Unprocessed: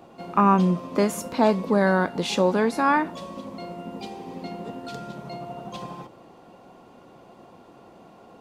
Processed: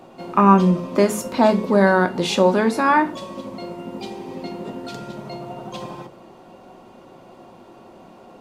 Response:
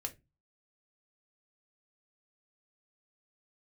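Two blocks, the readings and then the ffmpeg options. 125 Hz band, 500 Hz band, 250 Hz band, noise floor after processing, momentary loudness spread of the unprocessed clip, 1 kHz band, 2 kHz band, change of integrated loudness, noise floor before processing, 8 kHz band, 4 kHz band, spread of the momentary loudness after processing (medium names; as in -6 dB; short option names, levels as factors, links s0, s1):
+4.0 dB, +5.0 dB, +4.5 dB, -46 dBFS, 17 LU, +4.5 dB, +5.0 dB, +5.0 dB, -51 dBFS, +4.0 dB, +4.5 dB, 18 LU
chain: -filter_complex "[0:a]bandreject=f=71.53:t=h:w=4,bandreject=f=143.06:t=h:w=4,bandreject=f=214.59:t=h:w=4,bandreject=f=286.12:t=h:w=4,bandreject=f=357.65:t=h:w=4,bandreject=f=429.18:t=h:w=4,asplit=2[s0][s1];[1:a]atrim=start_sample=2205,asetrate=31752,aresample=44100[s2];[s1][s2]afir=irnorm=-1:irlink=0,volume=1.12[s3];[s0][s3]amix=inputs=2:normalize=0,volume=0.794"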